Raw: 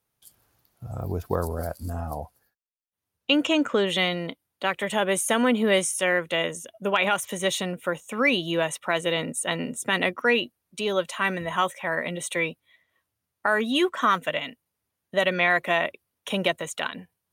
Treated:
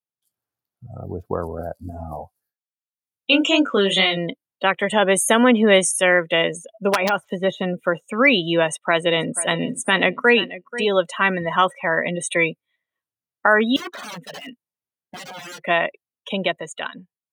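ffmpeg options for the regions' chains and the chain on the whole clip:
-filter_complex "[0:a]asettb=1/sr,asplit=3[a][b][c];[a]atrim=end=1.904[d];[b]atrim=start=1.9:end=4.17,asetpts=PTS-STARTPTS,afade=t=in:d=0.004:c=qsin,afade=t=out:st=2.266:d=0.004:c=qsin,deesser=0.55,highshelf=f=3.5k:g=9,flanger=delay=19.5:depth=6.5:speed=2.3[e];[c]atrim=start=4.166[f];[d][e]acrossfade=d=0.004:c1=hsin:c2=qsin[g];[g][f]acrossfade=d=0.004:c1=qsin:c2=hsin,asettb=1/sr,asplit=3[h][i][j];[h]atrim=end=6.884[k];[i]atrim=start=6.88:end=7.81,asetpts=PTS-STARTPTS,afade=t=in:d=0.004:c=qsin,afade=t=out:st=0.926:d=0.004:c=qsin,deesser=1,aeval=exprs='(mod(5.01*val(0)+1,2)-1)/5.01':c=same[l];[j]atrim=start=7.806[m];[k][l]acrossfade=d=0.004:c1=hsin:c2=qsin[n];[n][m]acrossfade=d=0.004:c1=qsin:c2=hsin,asettb=1/sr,asplit=3[o][p][q];[o]atrim=end=8.654[r];[p]atrim=start=8.65:end=10.88,asetpts=PTS-STARTPTS,afade=t=in:d=0.004:c=qsin,afade=t=out:st=2.226:d=0.004:c=qsin,agate=range=-9dB:threshold=-43dB:ratio=16:release=100:detection=peak,aecho=1:1:484|968:0.2|0.0359,atrim=end_sample=98343[s];[q]atrim=start=10.876[t];[r][s]acrossfade=d=0.004:c1=hsin:c2=qsin[u];[u][t]acrossfade=d=0.004:c1=qsin:c2=hsin,asettb=1/sr,asplit=3[v][w][x];[v]atrim=end=13.764[y];[w]atrim=start=13.76:end=15.61,asetpts=PTS-STARTPTS,afade=t=in:d=0.004:c=qsin,afade=t=out:st=1.846:d=0.004:c=qsin,acompressor=threshold=-29dB:ratio=2:attack=3.2:release=140:knee=1:detection=peak,aeval=exprs='(mod(29.9*val(0)+1,2)-1)/29.9':c=same[z];[x]atrim=start=15.606[aa];[y][z]acrossfade=d=0.004:c1=hsin:c2=qsin[ab];[ab][aa]acrossfade=d=0.004:c1=qsin:c2=hsin,highpass=110,afftdn=nr=21:nf=-35,dynaudnorm=f=480:g=9:m=11.5dB"

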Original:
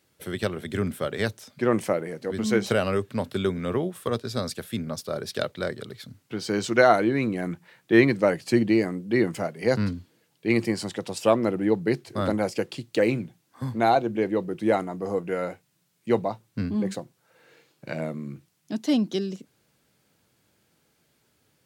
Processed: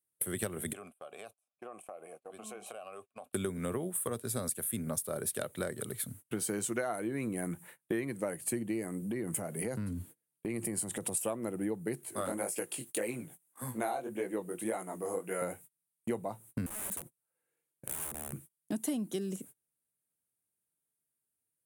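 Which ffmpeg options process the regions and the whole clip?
-filter_complex "[0:a]asettb=1/sr,asplit=3[a][b][c];[a]atrim=end=0.734[d];[b]atrim=start=0.73:end=3.33,asetpts=PTS-STARTPTS,afade=t=in:d=0.004:c=qsin,afade=t=out:st=2.596:d=0.004:c=qsin,asplit=3[e][f][g];[e]bandpass=f=730:t=q:w=8,volume=0dB[h];[f]bandpass=f=1.09k:t=q:w=8,volume=-6dB[i];[g]bandpass=f=2.44k:t=q:w=8,volume=-9dB[j];[h][i][j]amix=inputs=3:normalize=0,highshelf=f=3.3k:g=11.5,acompressor=threshold=-41dB:ratio=8:attack=3.2:release=140:knee=1:detection=peak[k];[c]atrim=start=3.326[l];[d][k]acrossfade=d=0.004:c1=hsin:c2=qsin[m];[m][l]acrossfade=d=0.004:c1=qsin:c2=hsin,asettb=1/sr,asplit=3[n][o][p];[n]atrim=end=9.024[q];[o]atrim=start=9.02:end=11.15,asetpts=PTS-STARTPTS,afade=t=in:d=0.004:c=qsin,afade=t=out:st=2.126:d=0.004:c=qsin,lowshelf=f=400:g=4.5,acompressor=threshold=-33dB:ratio=4:attack=3.2:release=140:knee=1:detection=peak[r];[p]atrim=start=11.146[s];[q][r]acrossfade=d=0.004:c1=hsin:c2=qsin[t];[t][s]acrossfade=d=0.004:c1=qsin:c2=hsin,asettb=1/sr,asplit=3[u][v][w];[u]atrim=end=12.034[x];[v]atrim=start=12.03:end=15.42,asetpts=PTS-STARTPTS,afade=t=in:d=0.004:c=qsin,afade=t=out:st=3.386:d=0.004:c=qsin,highpass=f=420:p=1,acompressor=mode=upward:threshold=-40dB:ratio=2.5:attack=3.2:release=140:knee=2.83:detection=peak,flanger=delay=16:depth=7.1:speed=1.8[y];[w]atrim=start=15.416[z];[x][y]acrossfade=d=0.004:c1=hsin:c2=qsin[aa];[aa][z]acrossfade=d=0.004:c1=qsin:c2=hsin,asettb=1/sr,asplit=3[ab][ac][ad];[ab]atrim=end=16.664[ae];[ac]atrim=start=16.66:end=18.33,asetpts=PTS-STARTPTS,afade=t=in:d=0.004:c=qsin,afade=t=out:st=1.666:d=0.004:c=qsin,aeval=exprs='(mod(28.2*val(0)+1,2)-1)/28.2':c=same,acompressor=threshold=-42dB:ratio=20:attack=3.2:release=140:knee=1:detection=peak[af];[ad]atrim=start=18.326[ag];[ae][af]acrossfade=d=0.004:c1=hsin:c2=qsin[ah];[ah][ag]acrossfade=d=0.004:c1=qsin:c2=hsin,agate=range=-30dB:threshold=-50dB:ratio=16:detection=peak,highshelf=f=7k:t=q:w=3:g=14,acompressor=threshold=-31dB:ratio=12"

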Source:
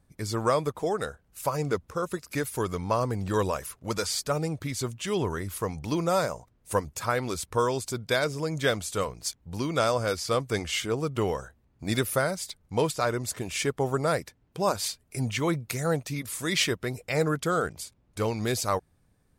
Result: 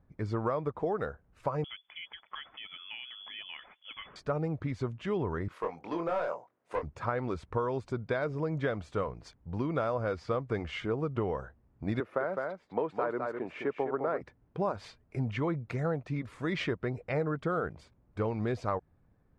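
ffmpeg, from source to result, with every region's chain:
-filter_complex "[0:a]asettb=1/sr,asplit=3[a][b][c];[a]atrim=end=1.644[d];[b]atrim=start=1.64:end=4.16,asetpts=PTS-STARTPTS,afade=t=in:d=0.004:c=qsin,afade=t=out:st=2.516:d=0.004:c=qsin,acompressor=threshold=-30dB:ratio=4:attack=3.2:release=140:knee=1:detection=peak,lowpass=f=3k:t=q:w=0.5098,lowpass=f=3k:t=q:w=0.6013,lowpass=f=3k:t=q:w=0.9,lowpass=f=3k:t=q:w=2.563,afreqshift=-3500[e];[c]atrim=start=4.156[f];[d][e]acrossfade=d=0.004:c1=hsin:c2=qsin[g];[g][f]acrossfade=d=0.004:c1=qsin:c2=hsin,asettb=1/sr,asplit=3[h][i][j];[h]atrim=end=5.484[k];[i]atrim=start=5.48:end=6.83,asetpts=PTS-STARTPTS,afade=t=in:d=0.004:c=qsin,afade=t=out:st=1.346:d=0.004:c=qsin,highpass=430,volume=25.5dB,asoftclip=hard,volume=-25.5dB,asplit=2[l][m];[m]adelay=24,volume=-5dB[n];[l][n]amix=inputs=2:normalize=0,atrim=end_sample=59535[o];[j]atrim=start=6.826[p];[k][o]acrossfade=d=0.004:c1=hsin:c2=qsin[q];[q][p]acrossfade=d=0.004:c1=qsin:c2=hsin,asettb=1/sr,asplit=3[r][s][t];[r]atrim=end=12.004[u];[s]atrim=start=12:end=14.21,asetpts=PTS-STARTPTS,afade=t=in:d=0.004:c=qsin,afade=t=out:st=2.206:d=0.004:c=qsin,acrossover=split=220 2700:gain=0.0708 1 0.224[v][w][x];[v][w][x]amix=inputs=3:normalize=0,aecho=1:1:207:0.447,atrim=end_sample=97461[y];[t]atrim=start=14.206[z];[u][y]acrossfade=d=0.004:c1=hsin:c2=qsin[aa];[aa][z]acrossfade=d=0.004:c1=qsin:c2=hsin,lowpass=1.6k,acompressor=threshold=-27dB:ratio=6"

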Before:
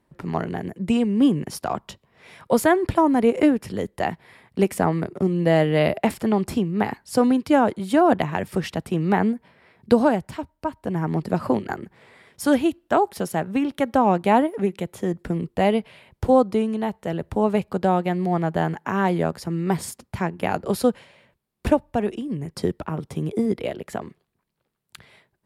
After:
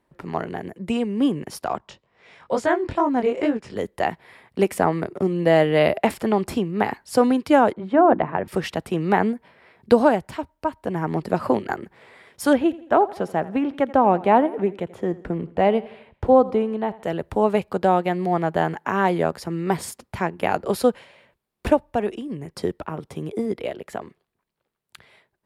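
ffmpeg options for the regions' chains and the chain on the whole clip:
-filter_complex "[0:a]asettb=1/sr,asplit=3[a][b][c];[a]atrim=end=1.784[d];[b]atrim=start=1.78:end=3.76,asetpts=PTS-STARTPTS,afade=t=in:d=0.004:c=qsin,afade=t=out:st=1.976:d=0.004:c=qsin,lowpass=f=7.9k:w=0.5412,lowpass=f=7.9k:w=1.3066,flanger=delay=17:depth=7.3:speed=2.3[e];[c]atrim=start=3.756[f];[d][e]acrossfade=d=0.004:c1=hsin:c2=qsin[g];[g][f]acrossfade=d=0.004:c1=qsin:c2=hsin,asettb=1/sr,asplit=3[h][i][j];[h]atrim=end=7.734[k];[i]atrim=start=7.73:end=8.48,asetpts=PTS-STARTPTS,afade=t=in:d=0.004:c=qsin,afade=t=out:st=0.746:d=0.004:c=qsin,lowpass=1.5k,bandreject=f=50:t=h:w=6,bandreject=f=100:t=h:w=6,bandreject=f=150:t=h:w=6,bandreject=f=200:t=h:w=6,bandreject=f=250:t=h:w=6,bandreject=f=300:t=h:w=6,bandreject=f=350:t=h:w=6[l];[j]atrim=start=8.476[m];[k][l]acrossfade=d=0.004:c1=hsin:c2=qsin[n];[n][m]acrossfade=d=0.004:c1=qsin:c2=hsin,asettb=1/sr,asplit=3[o][p][q];[o]atrim=end=12.534[r];[p]atrim=start=12.53:end=17.03,asetpts=PTS-STARTPTS,afade=t=in:d=0.004:c=qsin,afade=t=out:st=4.496:d=0.004:c=qsin,lowpass=f=1.7k:p=1,aecho=1:1:84|168|252|336:0.112|0.055|0.0269|0.0132,atrim=end_sample=198450[s];[q]atrim=start=17.026[t];[r][s]acrossfade=d=0.004:c1=hsin:c2=qsin[u];[u][t]acrossfade=d=0.004:c1=qsin:c2=hsin,bass=f=250:g=-14,treble=f=4k:g=-3,dynaudnorm=f=240:g=31:m=3dB,lowshelf=f=160:g=11.5"

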